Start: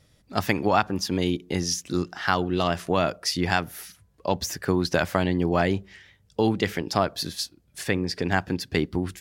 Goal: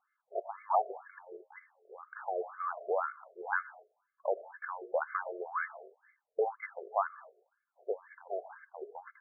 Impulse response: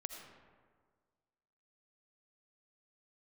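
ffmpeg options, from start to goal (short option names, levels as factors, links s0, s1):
-filter_complex "[0:a]asuperstop=centerf=1900:order=8:qfactor=7.6,asplit=2[s0][s1];[1:a]atrim=start_sample=2205,afade=t=out:st=0.29:d=0.01,atrim=end_sample=13230[s2];[s1][s2]afir=irnorm=-1:irlink=0,volume=0.473[s3];[s0][s3]amix=inputs=2:normalize=0,afftfilt=real='re*between(b*sr/1024,490*pow(1600/490,0.5+0.5*sin(2*PI*2*pts/sr))/1.41,490*pow(1600/490,0.5+0.5*sin(2*PI*2*pts/sr))*1.41)':imag='im*between(b*sr/1024,490*pow(1600/490,0.5+0.5*sin(2*PI*2*pts/sr))/1.41,490*pow(1600/490,0.5+0.5*sin(2*PI*2*pts/sr))*1.41)':win_size=1024:overlap=0.75,volume=0.473"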